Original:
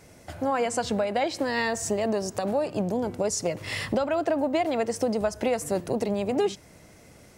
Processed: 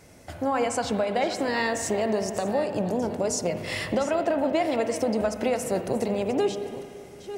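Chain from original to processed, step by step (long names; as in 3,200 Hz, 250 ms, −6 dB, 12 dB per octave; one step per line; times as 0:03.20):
delay that plays each chunk backwards 529 ms, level −13 dB
spring reverb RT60 2.4 s, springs 37/56 ms, chirp 80 ms, DRR 8 dB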